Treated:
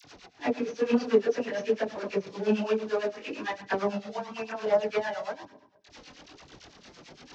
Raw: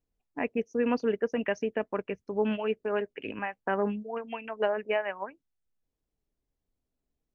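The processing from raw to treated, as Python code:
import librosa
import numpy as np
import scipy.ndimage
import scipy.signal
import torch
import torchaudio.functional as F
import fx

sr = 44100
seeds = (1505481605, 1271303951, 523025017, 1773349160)

y = fx.delta_mod(x, sr, bps=32000, step_db=-43.0)
y = scipy.signal.sosfilt(scipy.signal.butter(2, 72.0, 'highpass', fs=sr, output='sos'), y)
y = fx.low_shelf(y, sr, hz=130.0, db=-9.5)
y = fx.echo_feedback(y, sr, ms=74, feedback_pct=60, wet_db=-17.5)
y = fx.room_shoebox(y, sr, seeds[0], volume_m3=580.0, walls='mixed', distance_m=0.4)
y = fx.chorus_voices(y, sr, voices=2, hz=0.54, base_ms=24, depth_ms=4.2, mix_pct=65)
y = y * (1.0 - 0.82 / 2.0 + 0.82 / 2.0 * np.cos(2.0 * np.pi * 8.9 * (np.arange(len(y)) / sr)))
y = fx.dispersion(y, sr, late='lows', ms=47.0, hz=1100.0)
y = F.gain(torch.from_numpy(y), 9.0).numpy()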